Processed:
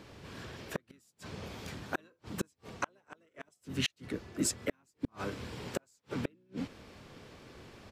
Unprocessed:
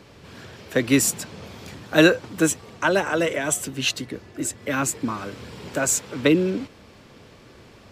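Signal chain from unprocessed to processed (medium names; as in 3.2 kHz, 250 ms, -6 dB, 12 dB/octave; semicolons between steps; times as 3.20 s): harmony voices -7 st -7 dB, -3 st -13 dB; inverted gate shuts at -14 dBFS, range -42 dB; trim -5 dB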